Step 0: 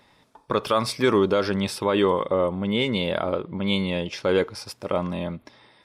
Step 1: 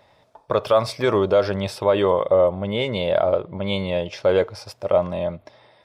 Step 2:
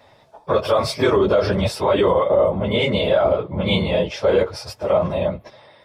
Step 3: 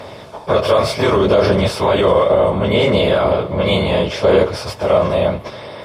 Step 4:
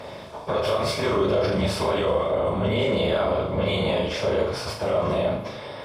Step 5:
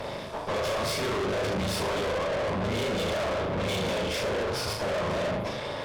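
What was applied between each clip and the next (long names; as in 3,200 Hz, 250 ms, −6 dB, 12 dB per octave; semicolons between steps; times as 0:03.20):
graphic EQ with 15 bands 100 Hz +7 dB, 250 Hz −5 dB, 630 Hz +12 dB, 10,000 Hz −5 dB; level −1.5 dB
random phases in long frames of 50 ms; brickwall limiter −13 dBFS, peak gain reduction 9.5 dB; level +5 dB
compressor on every frequency bin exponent 0.6; phase shifter 0.69 Hz, delay 1.9 ms, feedback 22%
brickwall limiter −10.5 dBFS, peak gain reduction 8.5 dB; flutter between parallel walls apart 6.5 metres, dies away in 0.46 s; level −6 dB
tube saturation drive 33 dB, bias 0.65; level +6 dB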